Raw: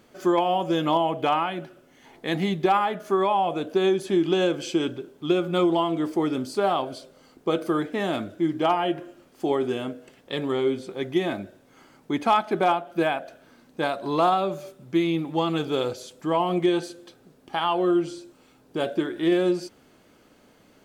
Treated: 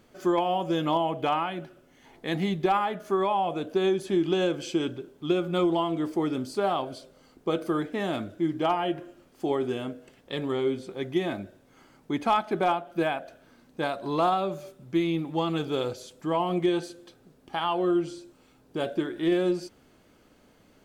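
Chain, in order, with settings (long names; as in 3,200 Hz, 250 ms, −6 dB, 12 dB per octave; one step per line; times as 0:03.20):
low-shelf EQ 90 Hz +8.5 dB
level −3.5 dB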